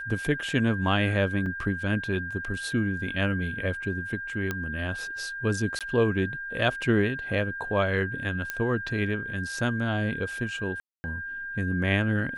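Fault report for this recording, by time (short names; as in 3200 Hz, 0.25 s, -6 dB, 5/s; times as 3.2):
tone 1600 Hz -33 dBFS
1.46 gap 3.3 ms
4.51 pop -15 dBFS
5.79–5.81 gap 17 ms
8.5 pop -14 dBFS
10.8–11.04 gap 0.24 s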